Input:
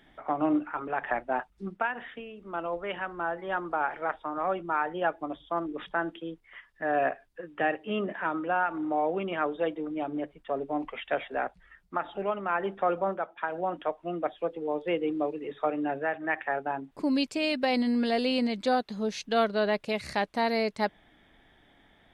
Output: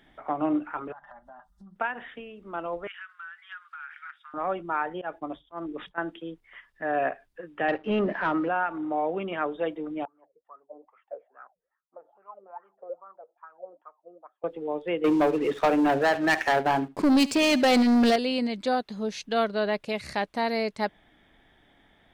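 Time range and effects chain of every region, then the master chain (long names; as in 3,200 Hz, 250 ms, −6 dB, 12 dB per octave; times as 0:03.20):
0:00.92–0:01.76: comb filter 5 ms, depth 72% + downward compressor 16 to 1, threshold −41 dBFS + phaser with its sweep stopped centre 1,000 Hz, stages 4
0:02.87–0:04.34: elliptic high-pass filter 1,400 Hz, stop band 60 dB + downward compressor 4 to 1, threshold −38 dBFS
0:04.90–0:05.98: downward expander −48 dBFS + volume swells 128 ms
0:07.68–0:08.49: leveller curve on the samples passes 2 + high-frequency loss of the air 270 metres
0:10.05–0:14.44: high-frequency loss of the air 460 metres + LFO wah 2.4 Hz 450–1,300 Hz, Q 14
0:15.04–0:18.16: leveller curve on the samples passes 3 + single-tap delay 72 ms −18.5 dB
whole clip: no processing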